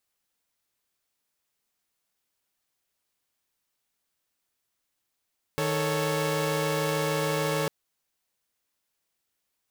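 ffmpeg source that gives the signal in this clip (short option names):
-f lavfi -i "aevalsrc='0.0447*((2*mod(155.56*t,1)-1)+(2*mod(440*t,1)-1)+(2*mod(554.37*t,1)-1))':d=2.1:s=44100"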